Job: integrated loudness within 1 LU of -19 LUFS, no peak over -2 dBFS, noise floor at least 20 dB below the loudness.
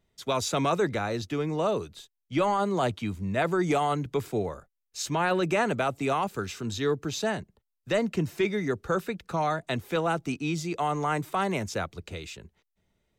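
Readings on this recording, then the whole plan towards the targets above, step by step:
loudness -28.5 LUFS; peak -16.5 dBFS; loudness target -19.0 LUFS
-> gain +9.5 dB

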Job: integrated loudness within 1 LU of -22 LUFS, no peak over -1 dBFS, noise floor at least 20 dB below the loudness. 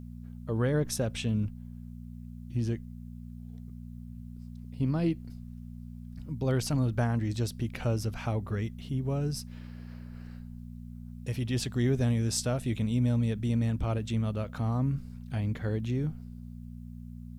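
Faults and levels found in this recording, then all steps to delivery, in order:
hum 60 Hz; harmonics up to 240 Hz; hum level -39 dBFS; loudness -31.0 LUFS; peak -16.0 dBFS; loudness target -22.0 LUFS
-> de-hum 60 Hz, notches 4; gain +9 dB

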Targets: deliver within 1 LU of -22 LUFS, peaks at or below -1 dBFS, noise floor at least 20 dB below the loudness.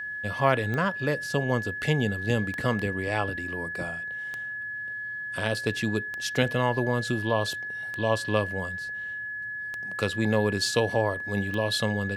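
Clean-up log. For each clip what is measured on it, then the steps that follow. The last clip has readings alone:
clicks 7; steady tone 1700 Hz; tone level -32 dBFS; loudness -28.0 LUFS; peak -7.0 dBFS; loudness target -22.0 LUFS
-> de-click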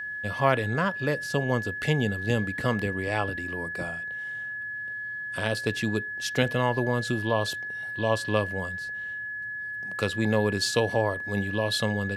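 clicks 0; steady tone 1700 Hz; tone level -32 dBFS
-> notch 1700 Hz, Q 30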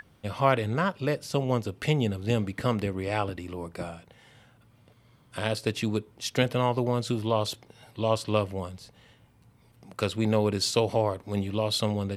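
steady tone none; loudness -28.0 LUFS; peak -7.5 dBFS; loudness target -22.0 LUFS
-> gain +6 dB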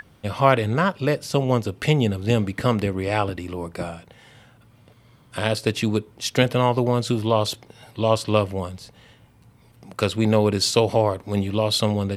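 loudness -22.0 LUFS; peak -1.5 dBFS; noise floor -54 dBFS

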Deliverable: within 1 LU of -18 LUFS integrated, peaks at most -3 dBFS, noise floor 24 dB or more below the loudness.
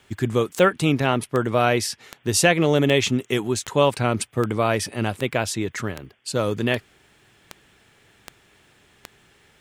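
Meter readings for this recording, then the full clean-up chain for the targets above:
clicks 12; loudness -22.0 LUFS; peak -3.5 dBFS; loudness target -18.0 LUFS
-> de-click; gain +4 dB; limiter -3 dBFS

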